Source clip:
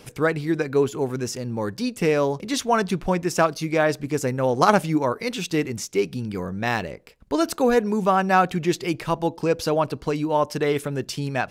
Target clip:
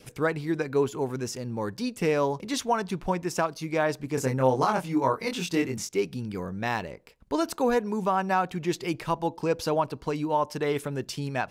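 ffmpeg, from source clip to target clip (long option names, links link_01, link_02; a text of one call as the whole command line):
ffmpeg -i in.wav -filter_complex "[0:a]adynamicequalizer=threshold=0.0158:dfrequency=940:dqfactor=3.6:tfrequency=940:tqfactor=3.6:attack=5:release=100:ratio=0.375:range=3:mode=boostabove:tftype=bell,alimiter=limit=-9.5dB:level=0:latency=1:release=433,asettb=1/sr,asplit=3[link_01][link_02][link_03];[link_01]atrim=end=4.154[link_04];[link_02]atrim=start=4.15:end=5.89,asetpts=PTS-STARTPTS,afade=type=in:duration=0.004:curve=qsin,afade=type=out:start_time=1.736:duration=0.004:curve=qsin,asplit=2[link_05][link_06];[link_06]adelay=23,volume=-3dB[link_07];[link_05][link_07]amix=inputs=2:normalize=0,atrim=end_sample=76734[link_08];[link_03]atrim=start=5.886[link_09];[link_04][link_08]acrossfade=duration=0.004:curve1=hsin:curve2=qsin[link_10];[link_10][link_09]acrossfade=duration=0.004:curve1=qsin:curve2=hsin,volume=-4.5dB" out.wav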